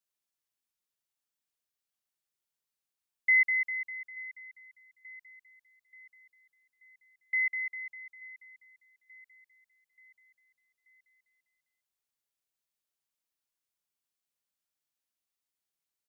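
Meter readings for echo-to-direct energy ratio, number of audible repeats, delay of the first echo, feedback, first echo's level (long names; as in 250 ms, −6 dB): −18.5 dB, 3, 882 ms, 51%, −20.0 dB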